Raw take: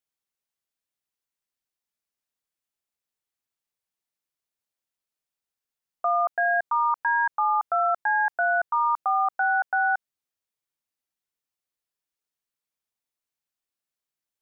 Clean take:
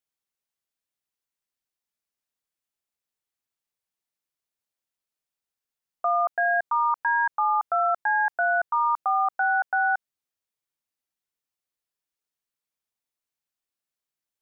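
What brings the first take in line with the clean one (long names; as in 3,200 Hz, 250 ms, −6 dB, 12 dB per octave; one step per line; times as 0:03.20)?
no processing needed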